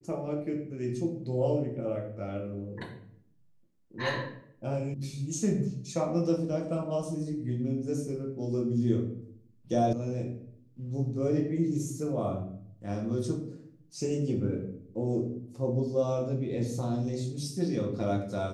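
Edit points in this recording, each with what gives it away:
0:04.94: cut off before it has died away
0:09.93: cut off before it has died away

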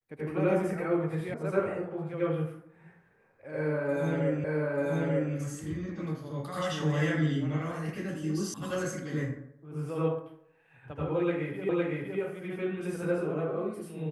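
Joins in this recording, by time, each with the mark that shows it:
0:01.34: cut off before it has died away
0:04.44: the same again, the last 0.89 s
0:08.54: cut off before it has died away
0:11.69: the same again, the last 0.51 s

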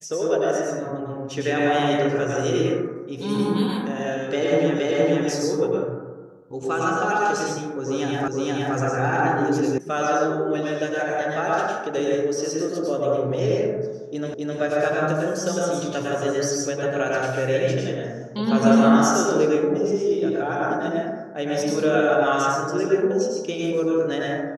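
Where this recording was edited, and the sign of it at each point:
0:04.79: the same again, the last 0.47 s
0:08.28: the same again, the last 0.47 s
0:09.78: cut off before it has died away
0:14.34: the same again, the last 0.26 s

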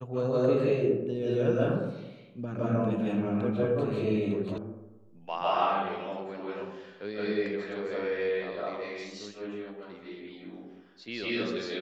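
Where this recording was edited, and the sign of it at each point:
0:04.58: cut off before it has died away

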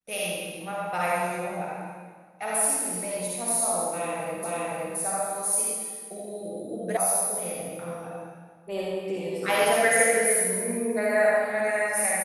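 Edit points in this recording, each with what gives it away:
0:04.44: the same again, the last 0.52 s
0:06.97: cut off before it has died away

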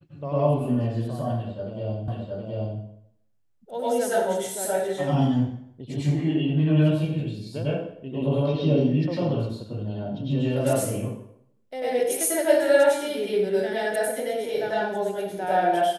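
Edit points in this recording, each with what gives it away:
0:02.08: the same again, the last 0.72 s

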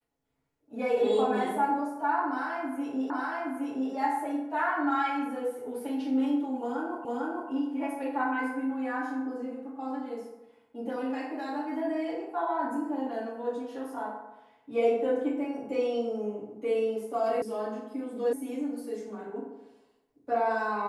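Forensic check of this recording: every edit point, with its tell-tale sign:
0:03.10: the same again, the last 0.82 s
0:07.05: the same again, the last 0.45 s
0:17.42: cut off before it has died away
0:18.33: cut off before it has died away

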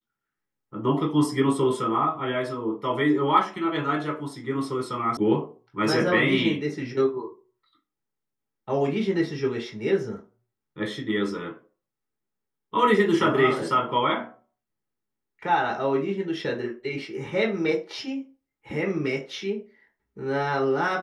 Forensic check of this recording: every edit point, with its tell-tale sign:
0:05.17: cut off before it has died away

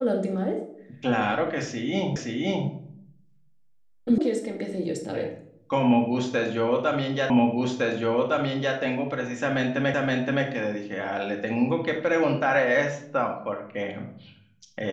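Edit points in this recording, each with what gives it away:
0:02.16: the same again, the last 0.52 s
0:04.18: cut off before it has died away
0:07.30: the same again, the last 1.46 s
0:09.94: the same again, the last 0.52 s

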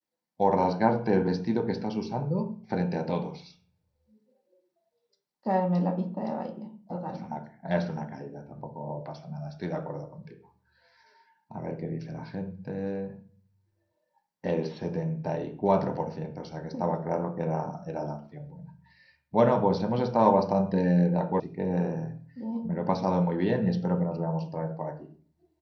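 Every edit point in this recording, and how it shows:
0:21.40: cut off before it has died away

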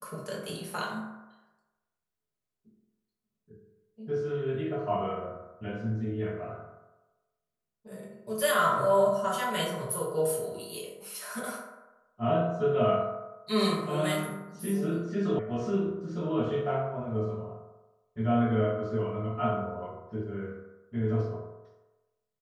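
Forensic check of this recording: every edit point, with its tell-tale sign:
0:15.39: cut off before it has died away

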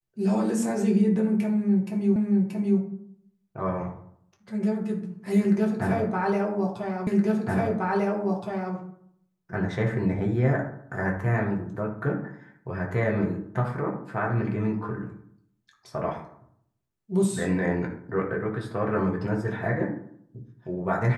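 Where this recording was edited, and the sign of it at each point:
0:02.16: the same again, the last 0.63 s
0:07.07: the same again, the last 1.67 s

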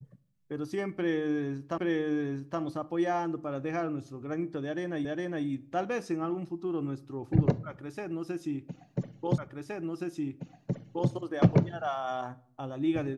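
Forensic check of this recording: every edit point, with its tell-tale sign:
0:01.78: the same again, the last 0.82 s
0:05.05: the same again, the last 0.41 s
0:09.38: the same again, the last 1.72 s

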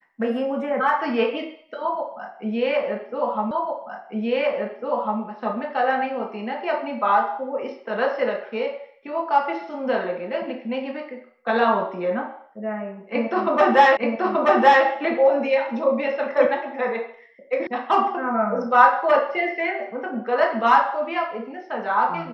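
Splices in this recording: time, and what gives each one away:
0:03.51: the same again, the last 1.7 s
0:13.97: the same again, the last 0.88 s
0:17.67: cut off before it has died away

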